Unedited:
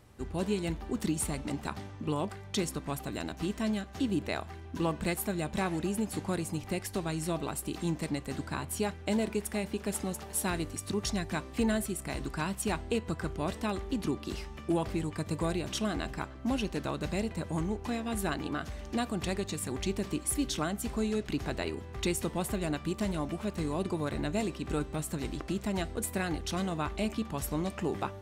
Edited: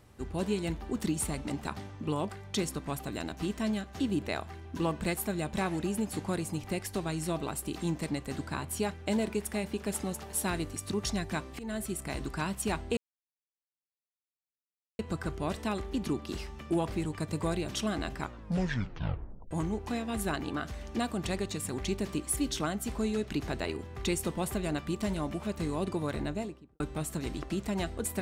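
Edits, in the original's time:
0:11.59–0:11.92: fade in, from −20.5 dB
0:12.97: splice in silence 2.02 s
0:16.19: tape stop 1.30 s
0:24.11–0:24.78: fade out and dull

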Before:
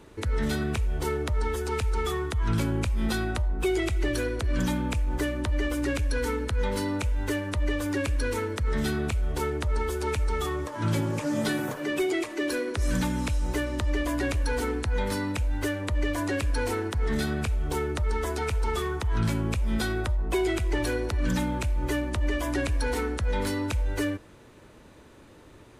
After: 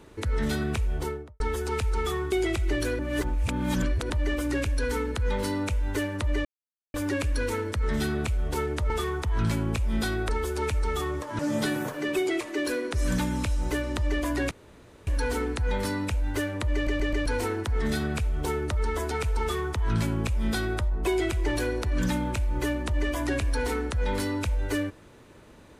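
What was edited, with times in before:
0:00.92–0:01.40: fade out and dull
0:02.32–0:03.65: remove
0:04.32–0:05.43: reverse
0:07.78: splice in silence 0.49 s
0:10.84–0:11.22: remove
0:14.34: splice in room tone 0.56 s
0:16.01: stutter in place 0.13 s, 4 plays
0:18.68–0:20.07: duplicate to 0:09.74

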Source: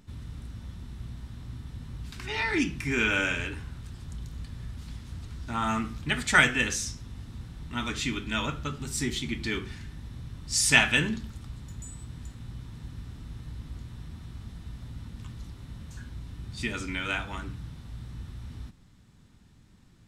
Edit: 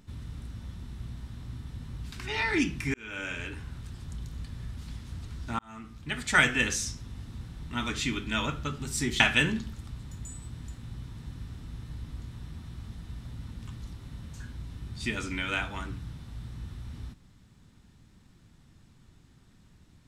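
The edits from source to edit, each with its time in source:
0:02.94–0:03.75: fade in
0:05.59–0:06.60: fade in linear
0:09.20–0:10.77: remove

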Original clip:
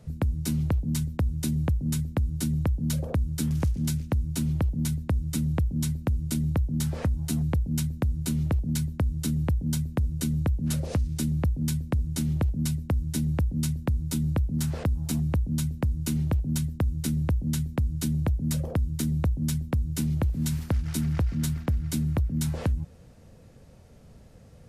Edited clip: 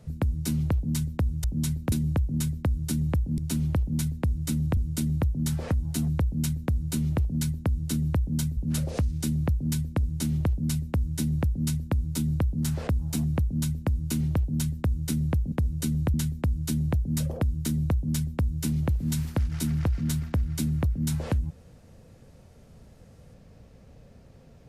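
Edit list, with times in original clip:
0:02.90–0:04.24: remove
0:05.63–0:06.11: move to 0:01.44
0:09.91–0:10.53: move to 0:17.48

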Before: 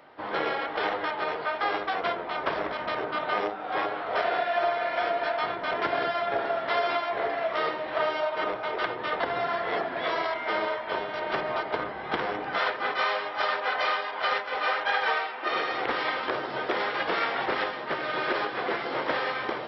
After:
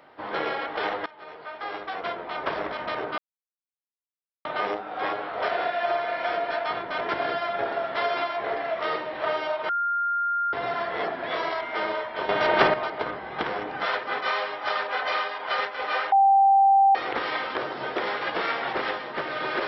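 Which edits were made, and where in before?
0:01.06–0:02.50: fade in, from −20.5 dB
0:03.18: splice in silence 1.27 s
0:08.42–0:09.26: beep over 1,400 Hz −22.5 dBFS
0:11.02–0:11.47: clip gain +10 dB
0:14.85–0:15.68: beep over 785 Hz −14 dBFS

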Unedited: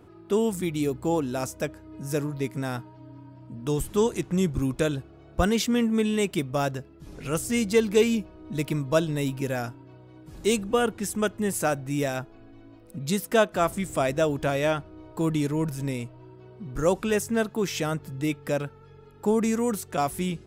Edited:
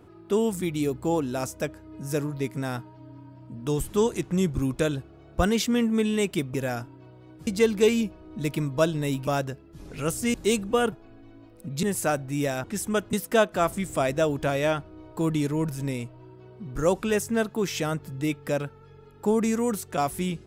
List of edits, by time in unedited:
0:06.54–0:07.61: swap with 0:09.41–0:10.34
0:10.92–0:11.41: swap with 0:12.22–0:13.13

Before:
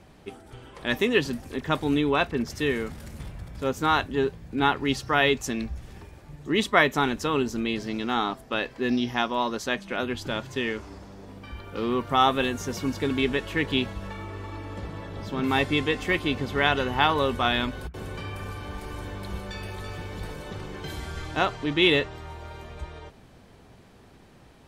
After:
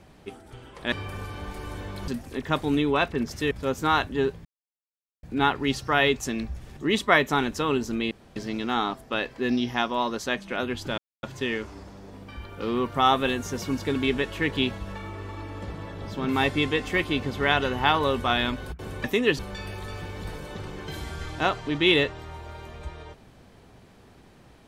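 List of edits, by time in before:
0:00.92–0:01.27: swap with 0:18.19–0:19.35
0:02.70–0:03.50: remove
0:04.44: splice in silence 0.78 s
0:05.98–0:06.42: remove
0:07.76: splice in room tone 0.25 s
0:10.38: splice in silence 0.25 s

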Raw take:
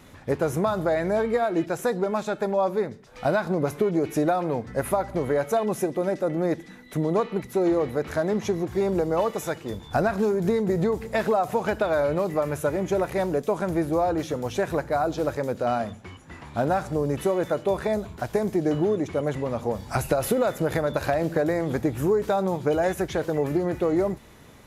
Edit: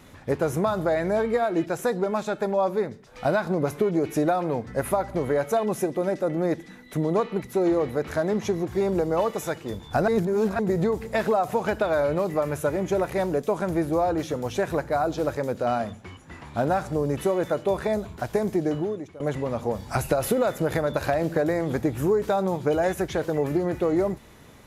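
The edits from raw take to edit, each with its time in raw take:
0:10.08–0:10.59: reverse
0:18.56–0:19.20: fade out, to −20.5 dB

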